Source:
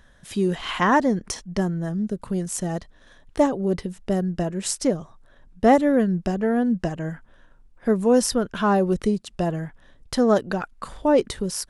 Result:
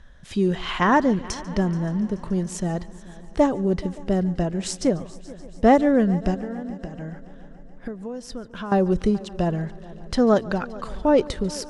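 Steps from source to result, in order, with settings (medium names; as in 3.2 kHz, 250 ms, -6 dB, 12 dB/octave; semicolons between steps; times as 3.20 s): low-pass 6.6 kHz 12 dB/octave; bass shelf 85 Hz +9.5 dB; 6.34–8.72 s: compression 12:1, threshold -30 dBFS, peak gain reduction 18 dB; multi-head delay 143 ms, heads first and third, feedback 64%, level -21 dB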